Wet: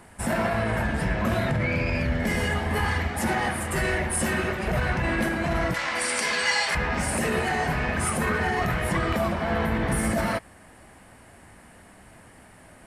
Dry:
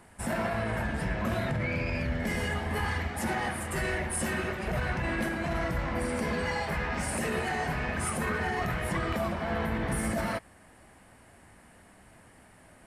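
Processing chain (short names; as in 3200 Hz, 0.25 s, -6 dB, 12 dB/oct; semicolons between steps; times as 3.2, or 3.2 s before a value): 5.74–6.75 weighting filter ITU-R 468; gain +5.5 dB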